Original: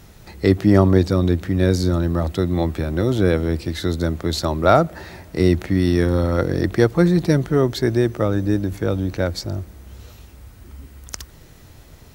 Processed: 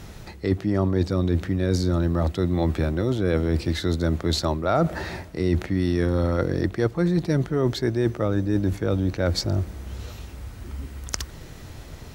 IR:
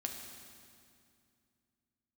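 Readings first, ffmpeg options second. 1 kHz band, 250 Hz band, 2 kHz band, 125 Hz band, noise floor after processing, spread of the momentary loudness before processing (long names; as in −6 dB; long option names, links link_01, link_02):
−6.0 dB, −5.0 dB, −5.0 dB, −3.5 dB, −42 dBFS, 11 LU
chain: -af "highshelf=frequency=12000:gain=-11.5,areverse,acompressor=threshold=-24dB:ratio=6,areverse,volume=5dB"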